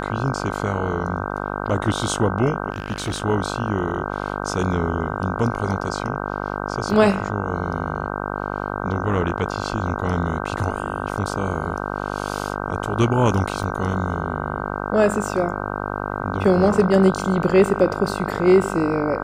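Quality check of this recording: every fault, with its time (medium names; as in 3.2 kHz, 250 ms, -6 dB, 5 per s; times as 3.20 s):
buzz 50 Hz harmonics 31 -27 dBFS
2.72–3.22 s: clipped -20 dBFS
13.63 s: dropout 2.4 ms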